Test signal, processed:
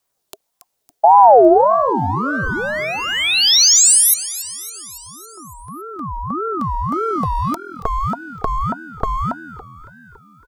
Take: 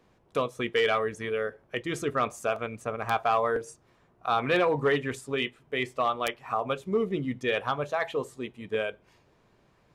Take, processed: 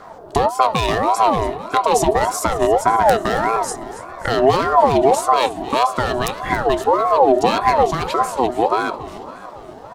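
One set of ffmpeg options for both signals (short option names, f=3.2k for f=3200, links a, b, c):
-filter_complex "[0:a]equalizer=f=120:t=o:w=1.1:g=12,asplit=2[a][b];[b]asoftclip=type=hard:threshold=-29.5dB,volume=-6.5dB[c];[a][c]amix=inputs=2:normalize=0,aphaser=in_gain=1:out_gain=1:delay=1.7:decay=0.22:speed=0.23:type=triangular,acompressor=threshold=-25dB:ratio=2.5,equalizer=f=1.9k:t=o:w=0.75:g=-12,acrossover=split=200|3000[d][e][f];[e]acompressor=threshold=-38dB:ratio=4[g];[d][g][f]amix=inputs=3:normalize=0,asplit=7[h][i][j][k][l][m][n];[i]adelay=279,afreqshift=41,volume=-15.5dB[o];[j]adelay=558,afreqshift=82,volume=-19.8dB[p];[k]adelay=837,afreqshift=123,volume=-24.1dB[q];[l]adelay=1116,afreqshift=164,volume=-28.4dB[r];[m]adelay=1395,afreqshift=205,volume=-32.7dB[s];[n]adelay=1674,afreqshift=246,volume=-37dB[t];[h][o][p][q][r][s][t]amix=inputs=7:normalize=0,alimiter=level_in=19dB:limit=-1dB:release=50:level=0:latency=1,aeval=exprs='val(0)*sin(2*PI*700*n/s+700*0.3/1.7*sin(2*PI*1.7*n/s))':c=same"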